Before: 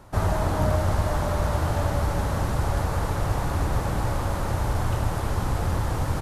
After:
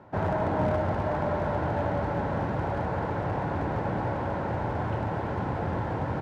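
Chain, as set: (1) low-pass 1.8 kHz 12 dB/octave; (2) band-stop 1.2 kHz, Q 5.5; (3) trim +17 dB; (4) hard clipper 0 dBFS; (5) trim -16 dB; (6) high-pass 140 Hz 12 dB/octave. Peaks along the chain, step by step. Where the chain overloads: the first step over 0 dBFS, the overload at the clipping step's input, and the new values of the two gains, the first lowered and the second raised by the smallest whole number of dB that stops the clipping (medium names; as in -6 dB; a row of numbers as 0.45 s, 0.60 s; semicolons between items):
-11.5 dBFS, -11.5 dBFS, +5.5 dBFS, 0.0 dBFS, -16.0 dBFS, -14.5 dBFS; step 3, 5.5 dB; step 3 +11 dB, step 5 -10 dB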